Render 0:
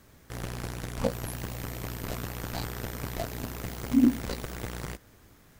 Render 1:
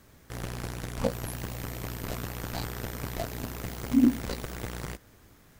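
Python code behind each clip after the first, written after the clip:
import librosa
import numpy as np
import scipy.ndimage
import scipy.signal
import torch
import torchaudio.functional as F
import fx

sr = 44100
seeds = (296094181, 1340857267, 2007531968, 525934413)

y = x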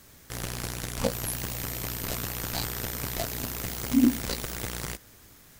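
y = fx.high_shelf(x, sr, hz=2600.0, db=10.0)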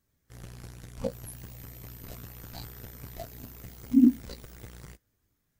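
y = fx.spectral_expand(x, sr, expansion=1.5)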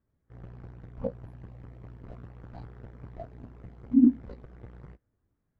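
y = scipy.signal.sosfilt(scipy.signal.butter(2, 1200.0, 'lowpass', fs=sr, output='sos'), x)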